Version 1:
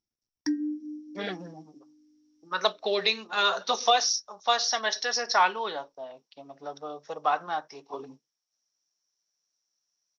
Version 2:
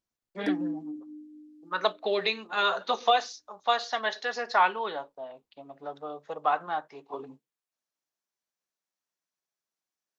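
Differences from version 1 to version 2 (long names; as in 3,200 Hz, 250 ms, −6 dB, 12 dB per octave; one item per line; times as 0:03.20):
speech: entry −0.80 s
master: remove low-pass with resonance 5,600 Hz, resonance Q 15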